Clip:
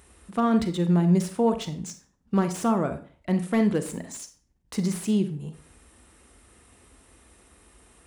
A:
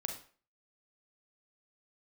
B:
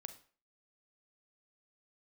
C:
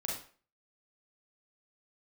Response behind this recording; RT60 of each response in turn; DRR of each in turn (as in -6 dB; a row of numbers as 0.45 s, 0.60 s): B; 0.45 s, 0.40 s, 0.45 s; 3.5 dB, 9.0 dB, -3.0 dB